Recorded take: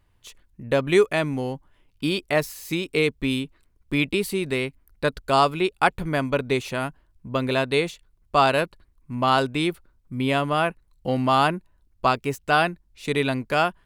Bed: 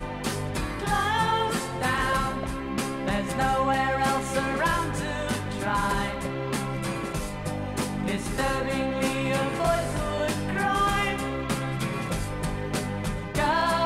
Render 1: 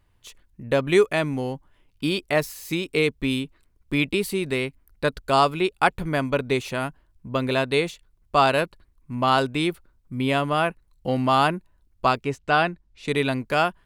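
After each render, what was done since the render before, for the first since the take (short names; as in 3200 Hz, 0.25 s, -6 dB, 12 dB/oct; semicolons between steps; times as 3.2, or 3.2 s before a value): 12.23–13.08 air absorption 68 m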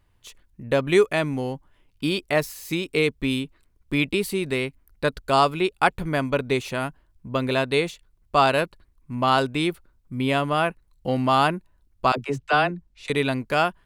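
12.12–13.1 dispersion lows, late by 59 ms, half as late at 330 Hz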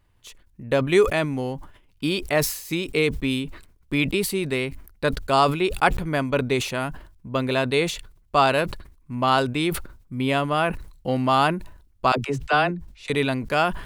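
sustainer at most 92 dB/s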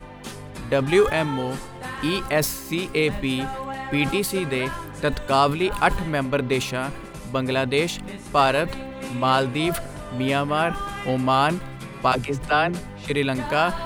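add bed -7.5 dB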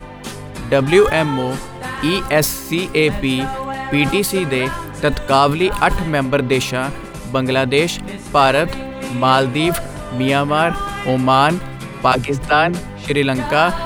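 gain +6.5 dB; limiter -1 dBFS, peak gain reduction 3 dB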